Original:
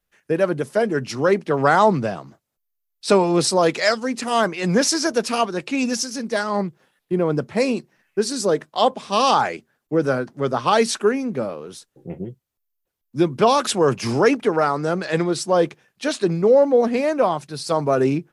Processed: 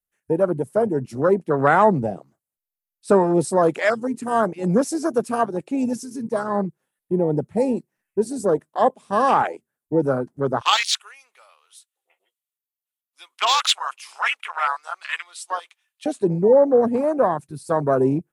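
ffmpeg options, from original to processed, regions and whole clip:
ffmpeg -i in.wav -filter_complex "[0:a]asettb=1/sr,asplit=3[link_01][link_02][link_03];[link_01]atrim=end=10.614[link_04];[link_02]atrim=start=10.61:end=16.06,asetpts=PTS-STARTPTS,afade=type=in:duration=0.004:curve=qsin,afade=type=out:start_time=5.446:duration=0.004:curve=qsin,highpass=frequency=900:width=0.5412,highpass=frequency=900:width=1.3066,equalizer=frequency=3300:width_type=o:width=1.3:gain=12,bandreject=frequency=1600:width=13[link_05];[link_03]atrim=start=16.056[link_06];[link_04][link_05]acrossfade=duration=0.004:curve1=hsin:curve2=qsin[link_07];[link_07][link_06]acrossfade=duration=0.004:curve1=qsin:curve2=hsin,afwtdn=0.0794,highshelf=frequency=6800:width_type=q:width=1.5:gain=9.5" out.wav

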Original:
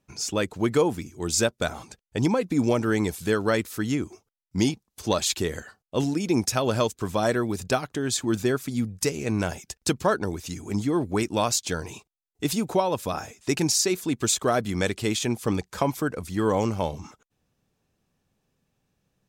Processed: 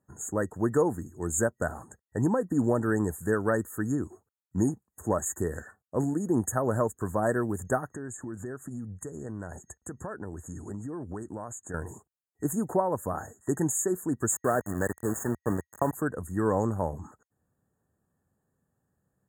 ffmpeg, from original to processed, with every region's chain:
ffmpeg -i in.wav -filter_complex "[0:a]asettb=1/sr,asplit=3[link_01][link_02][link_03];[link_01]atrim=end=7.944[link_04];[link_02]atrim=start=7.94:end=11.74,asetpts=PTS-STARTPTS,afade=type=in:duration=0.004:curve=qsin,afade=type=out:start_time=3.796:duration=0.004:curve=qsin,lowpass=8900,acompressor=threshold=-31dB:ratio=6:attack=3.2:release=140:knee=1:detection=peak[link_05];[link_03]atrim=start=11.736[link_06];[link_04][link_05]acrossfade=duration=0.004:curve1=hsin:curve2=qsin[link_07];[link_07][link_06]acrossfade=duration=0.004:curve1=qsin:curve2=hsin,asettb=1/sr,asplit=3[link_08][link_09][link_10];[link_08]atrim=end=14.324[link_11];[link_09]atrim=start=14.32:end=15.93,asetpts=PTS-STARTPTS,afade=type=in:duration=0.004:curve=qsin,afade=type=out:start_time=1.606:duration=0.004:curve=qsin,highpass=100,aeval=exprs='val(0)*gte(abs(val(0)),0.0422)':channel_layout=same[link_12];[link_10]atrim=start=15.926[link_13];[link_11][link_12]acrossfade=duration=0.004:curve1=hsin:curve2=qsin[link_14];[link_14][link_13]acrossfade=duration=0.004:curve1=qsin:curve2=hsin,highpass=60,afftfilt=real='re*(1-between(b*sr/4096,1900,6500))':imag='im*(1-between(b*sr/4096,1900,6500))':win_size=4096:overlap=0.75,equalizer=frequency=80:width_type=o:width=0.77:gain=4,volume=-3dB" out.wav

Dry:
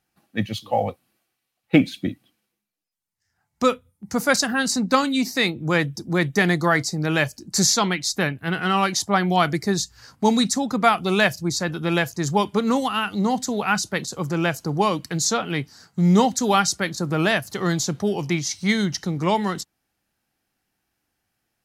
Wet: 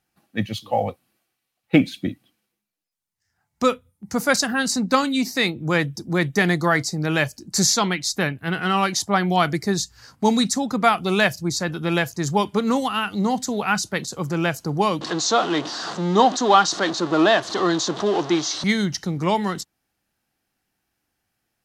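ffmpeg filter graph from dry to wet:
ffmpeg -i in.wav -filter_complex "[0:a]asettb=1/sr,asplit=3[link_01][link_02][link_03];[link_01]atrim=end=15.014[link_04];[link_02]atrim=start=15.01:end=18.64,asetpts=PTS-STARTPTS,afade=type=in:duration=0.004:curve=qsin,afade=type=out:start_time=3.626:duration=0.004:curve=qsin,aeval=exprs='val(0)+0.5*0.0668*sgn(val(0))':channel_layout=same,highpass=300,equalizer=frequency=320:width_type=q:width=4:gain=8,equalizer=frequency=700:width_type=q:width=4:gain=6,equalizer=frequency=1100:width_type=q:width=4:gain=6,equalizer=frequency=2300:width_type=q:width=4:gain=-9,equalizer=frequency=3700:width_type=q:width=4:gain=5,equalizer=frequency=5300:width_type=q:width=4:gain=-3,lowpass=frequency=6100:width=0.5412,lowpass=frequency=6100:width=1.3066[link_05];[link_03]atrim=start=18.636[link_06];[link_04][link_05]acrossfade=duration=0.004:curve1=hsin:curve2=qsin[link_07];[link_07][link_06]acrossfade=duration=0.004:curve1=qsin:curve2=hsin" out.wav

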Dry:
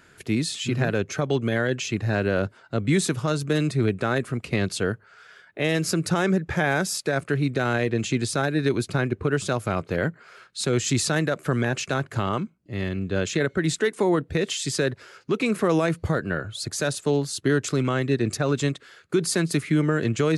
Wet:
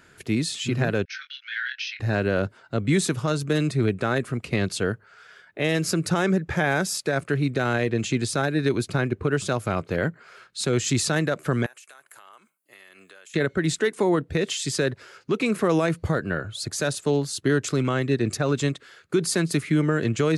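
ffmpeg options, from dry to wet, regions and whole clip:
ffmpeg -i in.wav -filter_complex "[0:a]asettb=1/sr,asplit=3[link_01][link_02][link_03];[link_01]atrim=end=1.054[link_04];[link_02]atrim=start=1.05:end=2,asetpts=PTS-STARTPTS,afade=type=in:duration=0.004:curve=qsin,afade=type=out:start_time=0.946:duration=0.004:curve=qsin,asuperpass=centerf=2900:order=20:qfactor=0.68,asplit=2[link_05][link_06];[link_06]adelay=23,volume=-6.5dB[link_07];[link_05][link_07]amix=inputs=2:normalize=0,atrim=end_sample=41895[link_08];[link_03]atrim=start=1.996[link_09];[link_04][link_08]acrossfade=duration=0.004:curve1=hsin:curve2=qsin[link_10];[link_10][link_09]acrossfade=duration=0.004:curve1=qsin:curve2=hsin,asettb=1/sr,asplit=3[link_11][link_12][link_13];[link_11]atrim=end=11.664[link_14];[link_12]atrim=start=11.66:end=13.34,asetpts=PTS-STARTPTS,afade=type=in:duration=0.004:curve=qsin,afade=type=out:start_time=1.676:duration=0.004:curve=qsin,highpass=970,highshelf=frequency=7500:width_type=q:width=1.5:gain=13.5,acompressor=threshold=-44dB:ratio=16:attack=3.2:release=140:knee=1:detection=peak[link_15];[link_13]atrim=start=13.336[link_16];[link_14][link_15]acrossfade=duration=0.004:curve1=hsin:curve2=qsin[link_17];[link_17][link_16]acrossfade=duration=0.004:curve1=qsin:curve2=hsin" out.wav

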